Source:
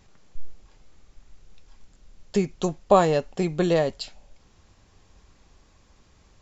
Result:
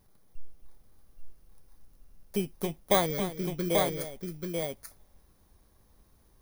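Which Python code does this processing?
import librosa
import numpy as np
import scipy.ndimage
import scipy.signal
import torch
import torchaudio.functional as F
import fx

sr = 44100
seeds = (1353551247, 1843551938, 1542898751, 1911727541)

y = fx.bit_reversed(x, sr, seeds[0], block=16)
y = fx.fixed_phaser(y, sr, hz=2800.0, stages=6, at=(3.06, 3.7))
y = fx.echo_multitap(y, sr, ms=(268, 836), db=(-12.0, -4.0))
y = y * librosa.db_to_amplitude(-7.5)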